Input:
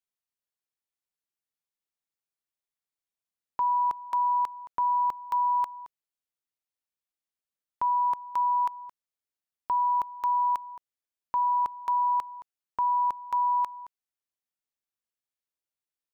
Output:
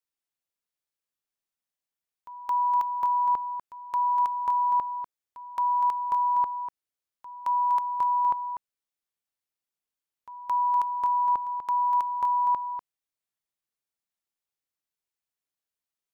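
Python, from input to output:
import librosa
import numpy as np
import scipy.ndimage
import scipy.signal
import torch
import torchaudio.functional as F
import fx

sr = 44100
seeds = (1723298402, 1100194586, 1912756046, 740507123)

y = x[::-1].copy()
y = y + 10.0 ** (-8.0 / 20.0) * np.pad(y, (int(245 * sr / 1000.0), 0))[:len(y)]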